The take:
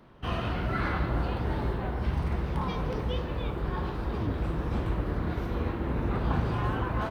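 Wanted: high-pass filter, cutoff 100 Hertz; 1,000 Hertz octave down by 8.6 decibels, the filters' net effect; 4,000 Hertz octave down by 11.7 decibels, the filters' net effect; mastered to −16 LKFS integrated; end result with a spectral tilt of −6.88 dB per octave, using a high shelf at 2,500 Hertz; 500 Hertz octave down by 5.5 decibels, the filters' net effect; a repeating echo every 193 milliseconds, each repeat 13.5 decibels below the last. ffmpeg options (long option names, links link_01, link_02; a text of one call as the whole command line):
ffmpeg -i in.wav -af "highpass=100,equalizer=frequency=500:width_type=o:gain=-5,equalizer=frequency=1000:width_type=o:gain=-7.5,highshelf=frequency=2500:gain=-8.5,equalizer=frequency=4000:width_type=o:gain=-8.5,aecho=1:1:193|386:0.211|0.0444,volume=19dB" out.wav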